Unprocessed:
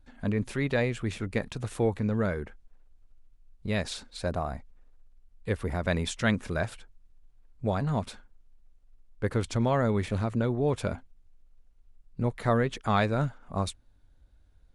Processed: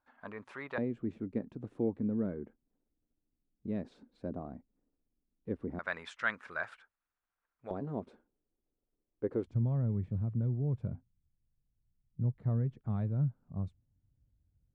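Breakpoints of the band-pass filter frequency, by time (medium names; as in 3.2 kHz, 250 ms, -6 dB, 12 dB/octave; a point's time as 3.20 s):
band-pass filter, Q 2.1
1.1 kHz
from 0.78 s 270 Hz
from 5.79 s 1.4 kHz
from 7.71 s 360 Hz
from 9.47 s 130 Hz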